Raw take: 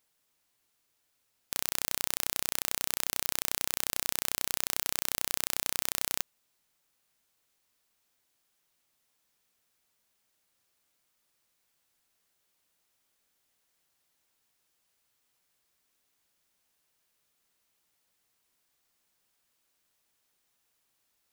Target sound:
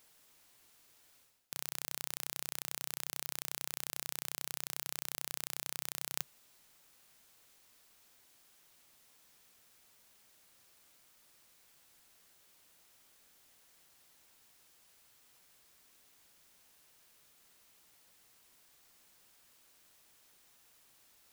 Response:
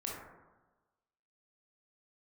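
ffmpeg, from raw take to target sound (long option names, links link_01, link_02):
-af "equalizer=frequency=140:width=5.6:gain=2.5,areverse,acompressor=threshold=-44dB:ratio=5,areverse,acrusher=bits=3:mode=log:mix=0:aa=0.000001,volume=10dB"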